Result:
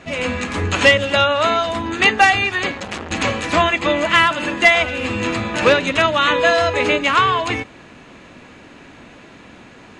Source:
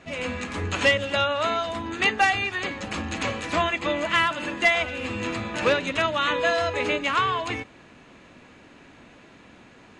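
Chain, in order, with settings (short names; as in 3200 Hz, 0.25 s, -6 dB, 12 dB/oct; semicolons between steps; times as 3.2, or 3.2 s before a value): 2.71–3.11 core saturation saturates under 2000 Hz; gain +8 dB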